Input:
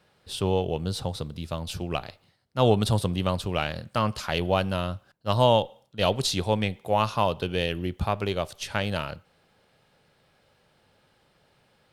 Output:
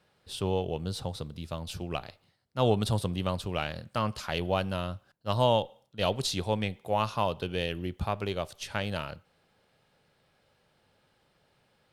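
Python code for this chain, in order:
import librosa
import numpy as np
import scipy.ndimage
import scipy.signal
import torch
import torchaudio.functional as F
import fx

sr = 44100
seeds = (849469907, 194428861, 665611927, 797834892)

y = x * 10.0 ** (-4.5 / 20.0)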